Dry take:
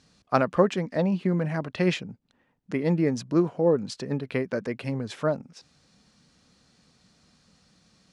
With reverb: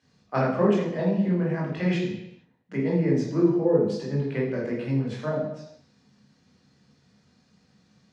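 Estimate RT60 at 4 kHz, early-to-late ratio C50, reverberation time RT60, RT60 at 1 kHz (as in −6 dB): 0.80 s, 3.0 dB, 0.80 s, 0.85 s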